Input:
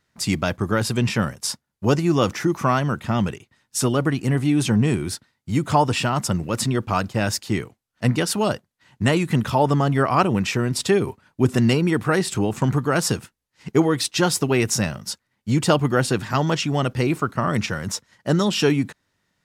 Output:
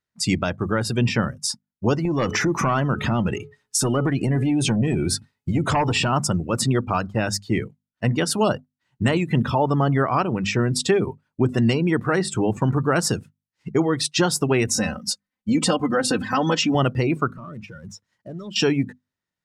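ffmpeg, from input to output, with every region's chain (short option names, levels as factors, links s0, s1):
-filter_complex "[0:a]asettb=1/sr,asplit=3[s0][s1][s2];[s0]atrim=end=2.054[s3];[s1]atrim=start=2.05:end=6.12,asetpts=PTS-STARTPTS,afade=t=in:d=0.004:c=qsin,afade=t=out:st=4.066:d=0.004:c=qsin,bandreject=f=424.7:t=h:w=4,bandreject=f=849.4:t=h:w=4,bandreject=f=1274.1:t=h:w=4,bandreject=f=1698.8:t=h:w=4,bandreject=f=2123.5:t=h:w=4,bandreject=f=2548.2:t=h:w=4,bandreject=f=2972.9:t=h:w=4,aeval=exprs='0.631*sin(PI/2*2.24*val(0)/0.631)':c=same,acompressor=threshold=0.1:ratio=8:attack=3.2:release=140:knee=1:detection=peak[s4];[s2]atrim=start=6.116[s5];[s3][s4]acrossfade=d=0.004:c1=hsin:c2=qsin[s6];[s6][s5]acrossfade=d=0.004:c1=qsin:c2=hsin,asettb=1/sr,asplit=3[s7][s8][s9];[s7]atrim=end=14.674[s10];[s8]atrim=start=14.67:end=16.75,asetpts=PTS-STARTPTS,afade=t=in:d=0.004:c=qsin,afade=t=out:st=2.076:d=0.004:c=qsin,aecho=1:1:3.9:0.91,atrim=end_sample=91728,acompressor=threshold=0.126:ratio=3:attack=3.2:release=140:knee=1:detection=peak[s11];[s9]atrim=start=16.746[s12];[s10][s11]acrossfade=d=0.004:c1=hsin:c2=qsin[s13];[s13][s12]acrossfade=d=0.004:c1=qsin:c2=hsin,asettb=1/sr,asplit=3[s14][s15][s16];[s14]atrim=end=17.314[s17];[s15]atrim=start=17.31:end=18.56,asetpts=PTS-STARTPTS,afade=t=in:d=0.004:c=qsin,afade=t=out:st=1.246:d=0.004:c=qsin,acompressor=threshold=0.0158:ratio=3:attack=3.2:release=140:knee=1:detection=peak,volume=37.6,asoftclip=hard,volume=0.0266[s18];[s16]atrim=start=18.556[s19];[s17][s18]acrossfade=d=0.004:c1=hsin:c2=qsin[s20];[s20][s19]acrossfade=d=0.004:c1=qsin:c2=hsin,bandreject=f=50:t=h:w=6,bandreject=f=100:t=h:w=6,bandreject=f=150:t=h:w=6,bandreject=f=200:t=h:w=6,bandreject=f=250:t=h:w=6,afftdn=nr=19:nf=-34,alimiter=limit=0.266:level=0:latency=1:release=451,volume=1.33"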